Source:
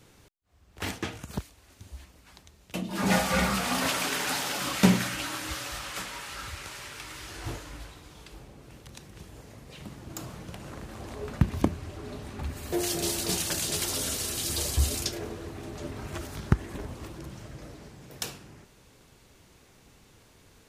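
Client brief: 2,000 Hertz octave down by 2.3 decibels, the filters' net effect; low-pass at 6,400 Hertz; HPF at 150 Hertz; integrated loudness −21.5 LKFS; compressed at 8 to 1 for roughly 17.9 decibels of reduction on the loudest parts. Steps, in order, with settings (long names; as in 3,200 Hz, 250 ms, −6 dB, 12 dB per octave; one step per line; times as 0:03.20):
high-pass filter 150 Hz
low-pass filter 6,400 Hz
parametric band 2,000 Hz −3 dB
downward compressor 8 to 1, threshold −38 dBFS
level +21 dB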